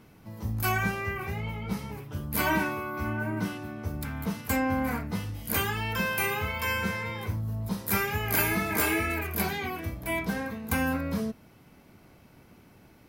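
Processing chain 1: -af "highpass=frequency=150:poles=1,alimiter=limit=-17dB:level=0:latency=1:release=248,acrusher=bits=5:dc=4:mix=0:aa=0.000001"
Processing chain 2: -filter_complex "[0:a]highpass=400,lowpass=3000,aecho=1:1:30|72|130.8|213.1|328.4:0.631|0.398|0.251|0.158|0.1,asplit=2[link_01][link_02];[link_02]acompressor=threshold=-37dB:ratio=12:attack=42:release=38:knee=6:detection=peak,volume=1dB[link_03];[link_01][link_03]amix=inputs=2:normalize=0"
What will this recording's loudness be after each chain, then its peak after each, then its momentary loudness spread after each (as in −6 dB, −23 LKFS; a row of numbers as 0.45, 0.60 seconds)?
−32.5, −27.0 LKFS; −17.0, −10.5 dBFS; 13, 12 LU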